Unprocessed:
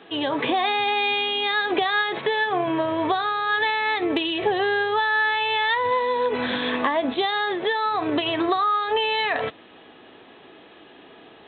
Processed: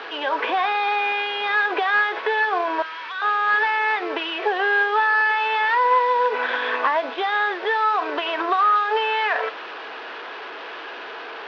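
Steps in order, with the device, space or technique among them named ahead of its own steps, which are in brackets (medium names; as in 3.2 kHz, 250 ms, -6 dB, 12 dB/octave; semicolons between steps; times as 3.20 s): 2.82–3.22 s: Chebyshev band-stop 110–2000 Hz, order 2; digital answering machine (band-pass 340–3200 Hz; one-bit delta coder 32 kbps, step -31 dBFS; cabinet simulation 420–4000 Hz, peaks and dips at 450 Hz +4 dB, 1 kHz +6 dB, 1.5 kHz +9 dB, 2.6 kHz +3 dB)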